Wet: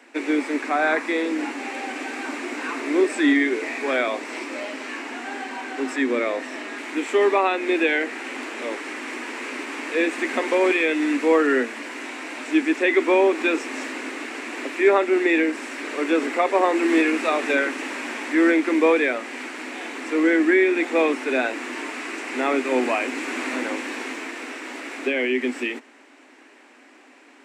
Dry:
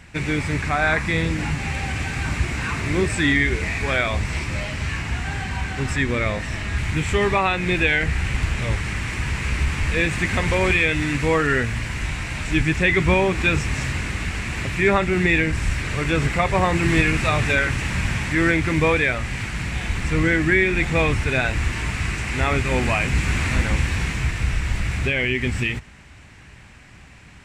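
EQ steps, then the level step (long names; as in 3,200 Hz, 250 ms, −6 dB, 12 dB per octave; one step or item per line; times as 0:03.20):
Butterworth high-pass 250 Hz 96 dB per octave
tilt shelving filter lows +5.5 dB
0.0 dB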